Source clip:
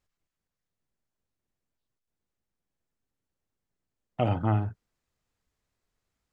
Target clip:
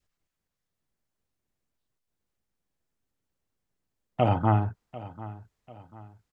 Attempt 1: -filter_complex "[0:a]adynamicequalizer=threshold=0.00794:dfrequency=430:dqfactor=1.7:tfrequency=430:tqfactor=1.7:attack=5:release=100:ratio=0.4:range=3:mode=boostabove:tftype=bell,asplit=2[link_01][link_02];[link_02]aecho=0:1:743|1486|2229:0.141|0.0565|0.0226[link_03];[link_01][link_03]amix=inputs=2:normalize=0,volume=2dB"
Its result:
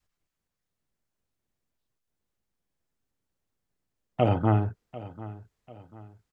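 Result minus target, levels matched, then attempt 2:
1,000 Hz band −3.0 dB
-filter_complex "[0:a]adynamicequalizer=threshold=0.00794:dfrequency=920:dqfactor=1.7:tfrequency=920:tqfactor=1.7:attack=5:release=100:ratio=0.4:range=3:mode=boostabove:tftype=bell,asplit=2[link_01][link_02];[link_02]aecho=0:1:743|1486|2229:0.141|0.0565|0.0226[link_03];[link_01][link_03]amix=inputs=2:normalize=0,volume=2dB"

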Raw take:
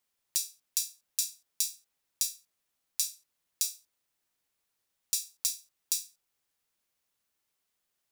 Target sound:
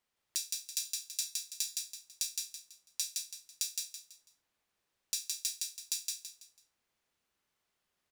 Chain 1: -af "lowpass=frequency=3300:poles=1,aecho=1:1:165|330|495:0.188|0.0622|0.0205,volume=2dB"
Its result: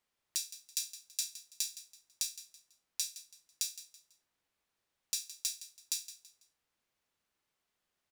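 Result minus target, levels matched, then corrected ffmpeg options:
echo-to-direct −12 dB
-af "lowpass=frequency=3300:poles=1,aecho=1:1:165|330|495|660:0.75|0.247|0.0817|0.0269,volume=2dB"

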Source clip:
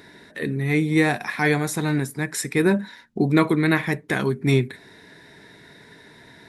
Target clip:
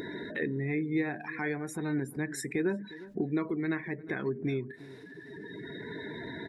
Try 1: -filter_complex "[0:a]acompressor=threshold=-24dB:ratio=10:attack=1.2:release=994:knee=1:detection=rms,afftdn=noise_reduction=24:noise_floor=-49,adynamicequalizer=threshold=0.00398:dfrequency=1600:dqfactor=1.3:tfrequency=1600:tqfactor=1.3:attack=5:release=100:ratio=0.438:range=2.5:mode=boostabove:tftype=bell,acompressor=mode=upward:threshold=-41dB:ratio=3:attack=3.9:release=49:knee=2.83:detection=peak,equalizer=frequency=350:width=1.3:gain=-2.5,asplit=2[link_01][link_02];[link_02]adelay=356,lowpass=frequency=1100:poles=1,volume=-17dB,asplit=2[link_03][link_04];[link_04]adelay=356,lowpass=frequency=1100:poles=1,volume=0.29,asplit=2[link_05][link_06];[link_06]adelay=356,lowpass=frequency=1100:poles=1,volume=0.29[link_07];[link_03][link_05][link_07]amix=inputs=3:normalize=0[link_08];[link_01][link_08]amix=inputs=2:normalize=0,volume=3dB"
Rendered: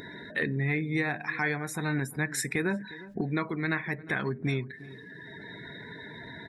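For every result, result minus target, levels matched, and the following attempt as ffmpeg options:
downward compressor: peak gain reduction −7 dB; 250 Hz band −4.0 dB
-filter_complex "[0:a]acompressor=threshold=-31.5dB:ratio=10:attack=1.2:release=994:knee=1:detection=rms,afftdn=noise_reduction=24:noise_floor=-49,adynamicequalizer=threshold=0.00398:dfrequency=1600:dqfactor=1.3:tfrequency=1600:tqfactor=1.3:attack=5:release=100:ratio=0.438:range=2.5:mode=boostabove:tftype=bell,acompressor=mode=upward:threshold=-41dB:ratio=3:attack=3.9:release=49:knee=2.83:detection=peak,equalizer=frequency=350:width=1.3:gain=-2.5,asplit=2[link_01][link_02];[link_02]adelay=356,lowpass=frequency=1100:poles=1,volume=-17dB,asplit=2[link_03][link_04];[link_04]adelay=356,lowpass=frequency=1100:poles=1,volume=0.29,asplit=2[link_05][link_06];[link_06]adelay=356,lowpass=frequency=1100:poles=1,volume=0.29[link_07];[link_03][link_05][link_07]amix=inputs=3:normalize=0[link_08];[link_01][link_08]amix=inputs=2:normalize=0,volume=3dB"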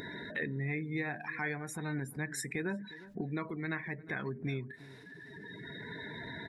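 250 Hz band −3.0 dB
-filter_complex "[0:a]acompressor=threshold=-31.5dB:ratio=10:attack=1.2:release=994:knee=1:detection=rms,afftdn=noise_reduction=24:noise_floor=-49,adynamicequalizer=threshold=0.00398:dfrequency=1600:dqfactor=1.3:tfrequency=1600:tqfactor=1.3:attack=5:release=100:ratio=0.438:range=2.5:mode=boostabove:tftype=bell,acompressor=mode=upward:threshold=-41dB:ratio=3:attack=3.9:release=49:knee=2.83:detection=peak,equalizer=frequency=350:width=1.3:gain=7,asplit=2[link_01][link_02];[link_02]adelay=356,lowpass=frequency=1100:poles=1,volume=-17dB,asplit=2[link_03][link_04];[link_04]adelay=356,lowpass=frequency=1100:poles=1,volume=0.29,asplit=2[link_05][link_06];[link_06]adelay=356,lowpass=frequency=1100:poles=1,volume=0.29[link_07];[link_03][link_05][link_07]amix=inputs=3:normalize=0[link_08];[link_01][link_08]amix=inputs=2:normalize=0,volume=3dB"

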